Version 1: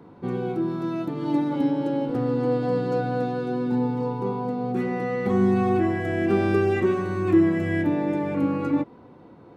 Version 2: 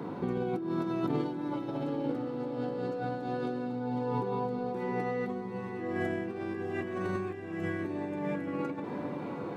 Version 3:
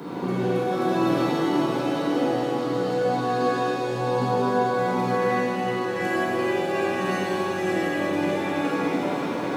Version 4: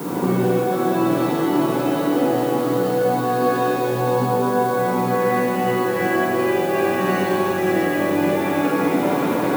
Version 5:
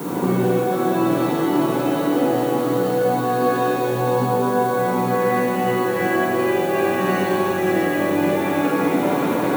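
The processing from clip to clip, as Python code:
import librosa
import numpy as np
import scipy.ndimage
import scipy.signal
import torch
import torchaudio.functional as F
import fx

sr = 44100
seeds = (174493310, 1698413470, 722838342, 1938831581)

y1 = scipy.signal.sosfilt(scipy.signal.butter(2, 130.0, 'highpass', fs=sr, output='sos'), x)
y1 = fx.over_compress(y1, sr, threshold_db=-35.0, ratio=-1.0)
y1 = fx.echo_diffused(y1, sr, ms=738, feedback_pct=45, wet_db=-7)
y2 = scipy.signal.sosfilt(scipy.signal.butter(2, 110.0, 'highpass', fs=sr, output='sos'), y1)
y2 = fx.high_shelf(y2, sr, hz=3100.0, db=11.5)
y2 = fx.rev_shimmer(y2, sr, seeds[0], rt60_s=3.6, semitones=7, shimmer_db=-8, drr_db=-9.0)
y3 = fx.high_shelf(y2, sr, hz=3500.0, db=-9.0)
y3 = fx.rider(y3, sr, range_db=10, speed_s=0.5)
y3 = fx.dmg_noise_colour(y3, sr, seeds[1], colour='blue', level_db=-45.0)
y3 = y3 * librosa.db_to_amplitude(5.0)
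y4 = fx.notch(y3, sr, hz=5000.0, q=13.0)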